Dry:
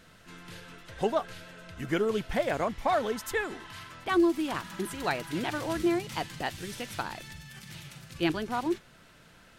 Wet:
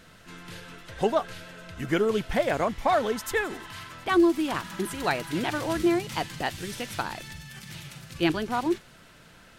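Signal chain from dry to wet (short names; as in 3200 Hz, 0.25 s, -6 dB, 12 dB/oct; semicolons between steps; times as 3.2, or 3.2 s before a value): thin delay 89 ms, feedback 80%, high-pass 5100 Hz, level -17.5 dB; gain +3.5 dB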